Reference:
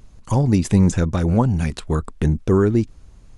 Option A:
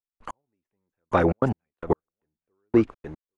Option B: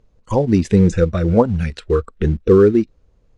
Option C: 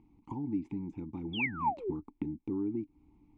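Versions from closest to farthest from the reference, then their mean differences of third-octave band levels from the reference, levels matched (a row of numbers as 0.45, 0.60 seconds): B, C, A; 4.5, 9.0, 17.5 decibels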